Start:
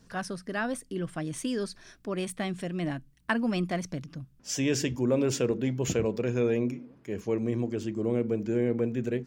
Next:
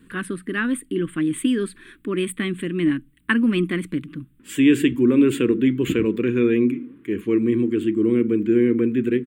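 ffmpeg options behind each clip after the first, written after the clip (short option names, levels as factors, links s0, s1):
-af "firequalizer=gain_entry='entry(130,0);entry(310,14);entry(670,-18);entry(1100,3);entry(1900,8);entry(3400,6);entry(5600,-24);entry(8100,5)':delay=0.05:min_phase=1,volume=1.26"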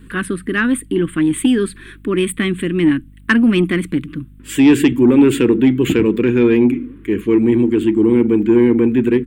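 -af "acontrast=85,aeval=exprs='val(0)+0.00891*(sin(2*PI*50*n/s)+sin(2*PI*2*50*n/s)/2+sin(2*PI*3*50*n/s)/3+sin(2*PI*4*50*n/s)/4+sin(2*PI*5*50*n/s)/5)':c=same"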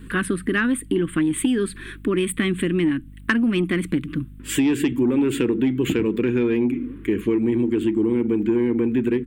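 -af "acompressor=threshold=0.112:ratio=5,volume=1.12"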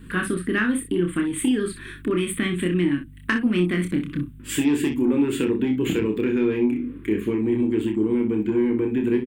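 -af "aecho=1:1:28|62:0.596|0.335,volume=0.708"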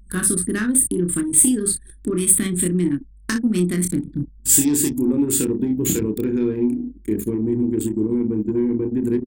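-af "aexciter=amount=5.8:drive=9.9:freq=4300,anlmdn=398,lowshelf=f=320:g=10,volume=0.596"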